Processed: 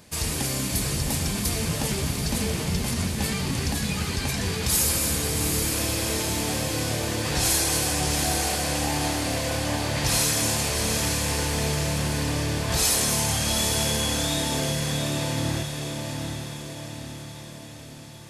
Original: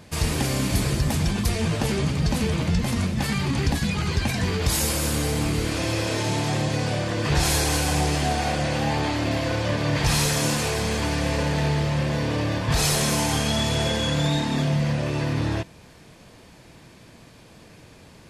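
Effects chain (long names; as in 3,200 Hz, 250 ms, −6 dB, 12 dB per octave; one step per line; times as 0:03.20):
high-shelf EQ 5,200 Hz +11.5 dB
mains-hum notches 50/100/150 Hz
on a send: feedback delay with all-pass diffusion 766 ms, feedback 56%, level −4.5 dB
on the sum: level −5 dB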